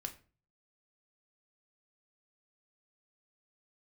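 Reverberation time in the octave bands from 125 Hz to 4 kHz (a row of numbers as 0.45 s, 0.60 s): 0.65 s, 0.45 s, 0.40 s, 0.35 s, 0.35 s, 0.30 s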